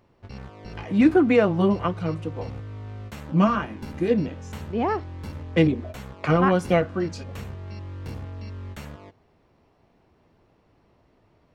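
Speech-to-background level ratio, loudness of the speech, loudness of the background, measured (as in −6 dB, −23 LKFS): 15.5 dB, −23.0 LKFS, −38.5 LKFS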